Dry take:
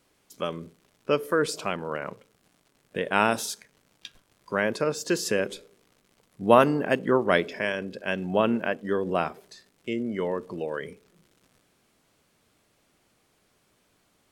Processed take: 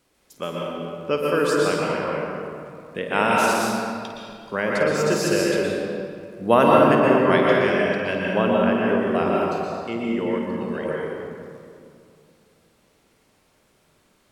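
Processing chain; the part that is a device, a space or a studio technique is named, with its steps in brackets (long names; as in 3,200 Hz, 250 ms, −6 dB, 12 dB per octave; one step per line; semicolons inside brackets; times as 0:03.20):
tunnel (flutter between parallel walls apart 9 metres, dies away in 0.29 s; convolution reverb RT60 2.4 s, pre-delay 113 ms, DRR −4 dB)
0:10.37–0:10.88: parametric band 580 Hz −12 dB → −2.5 dB 1.3 octaves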